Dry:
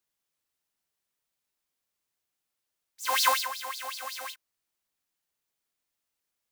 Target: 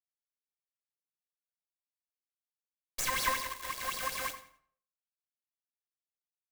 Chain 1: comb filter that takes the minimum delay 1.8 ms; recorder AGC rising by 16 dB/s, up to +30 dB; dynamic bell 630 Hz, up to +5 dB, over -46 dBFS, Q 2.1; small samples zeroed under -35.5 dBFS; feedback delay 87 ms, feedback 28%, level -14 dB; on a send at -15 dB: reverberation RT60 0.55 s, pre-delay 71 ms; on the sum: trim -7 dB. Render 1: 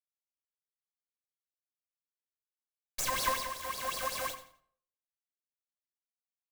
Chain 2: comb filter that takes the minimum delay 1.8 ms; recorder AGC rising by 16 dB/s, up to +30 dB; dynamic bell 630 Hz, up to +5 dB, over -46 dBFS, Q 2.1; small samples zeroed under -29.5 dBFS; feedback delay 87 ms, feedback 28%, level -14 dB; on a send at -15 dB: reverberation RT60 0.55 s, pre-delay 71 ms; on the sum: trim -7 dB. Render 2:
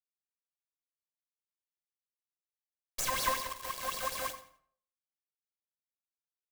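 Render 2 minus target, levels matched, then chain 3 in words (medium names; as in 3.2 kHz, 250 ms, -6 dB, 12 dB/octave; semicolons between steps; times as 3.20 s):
500 Hz band +4.0 dB
comb filter that takes the minimum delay 1.8 ms; recorder AGC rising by 16 dB/s, up to +30 dB; dynamic bell 2 kHz, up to +5 dB, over -46 dBFS, Q 2.1; small samples zeroed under -29.5 dBFS; feedback delay 87 ms, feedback 28%, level -14 dB; on a send at -15 dB: reverberation RT60 0.55 s, pre-delay 71 ms; on the sum: trim -7 dB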